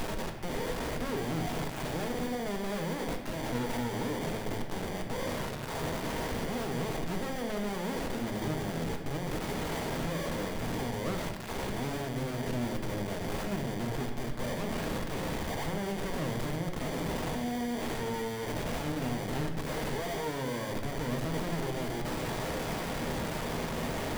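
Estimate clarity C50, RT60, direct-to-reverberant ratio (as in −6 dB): 6.0 dB, 1.1 s, 2.5 dB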